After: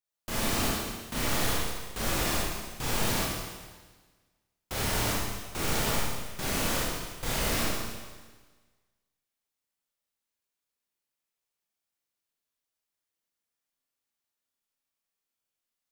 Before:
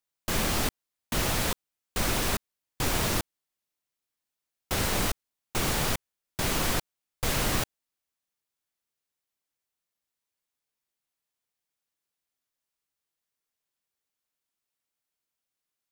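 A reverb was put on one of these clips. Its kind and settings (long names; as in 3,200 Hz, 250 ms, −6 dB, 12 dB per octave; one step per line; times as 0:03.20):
four-comb reverb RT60 1.4 s, combs from 27 ms, DRR −6 dB
level −7.5 dB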